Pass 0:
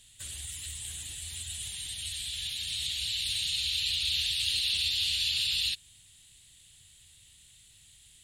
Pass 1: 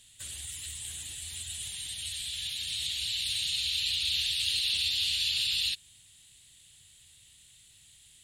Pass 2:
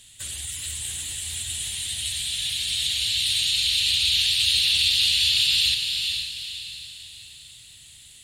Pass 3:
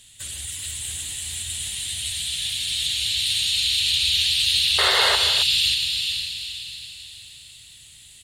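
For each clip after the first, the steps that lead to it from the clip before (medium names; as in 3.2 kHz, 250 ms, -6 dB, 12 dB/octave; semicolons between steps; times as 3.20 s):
bass shelf 69 Hz -7.5 dB
echo that smears into a reverb 457 ms, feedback 42%, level -5 dB; trim +7.5 dB
painted sound noise, 4.78–5.16 s, 380–2200 Hz -23 dBFS; loudspeakers at several distances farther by 53 m -10 dB, 93 m -11 dB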